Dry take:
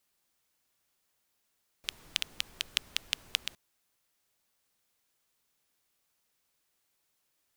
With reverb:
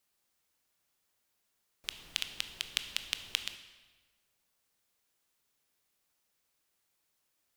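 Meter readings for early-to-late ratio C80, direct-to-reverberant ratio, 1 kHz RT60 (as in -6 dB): 12.0 dB, 8.5 dB, 1.4 s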